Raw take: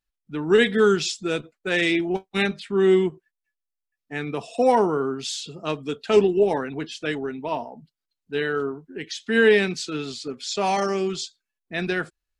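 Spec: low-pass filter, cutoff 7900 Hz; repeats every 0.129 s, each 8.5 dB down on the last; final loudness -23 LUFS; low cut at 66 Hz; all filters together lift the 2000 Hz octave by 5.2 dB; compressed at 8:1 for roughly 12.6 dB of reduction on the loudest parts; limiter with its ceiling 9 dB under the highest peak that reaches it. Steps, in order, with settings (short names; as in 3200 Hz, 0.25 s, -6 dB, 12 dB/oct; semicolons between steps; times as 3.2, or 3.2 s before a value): HPF 66 Hz; LPF 7900 Hz; bell 2000 Hz +6.5 dB; compressor 8:1, threshold -24 dBFS; limiter -20 dBFS; feedback echo 0.129 s, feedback 38%, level -8.5 dB; gain +7 dB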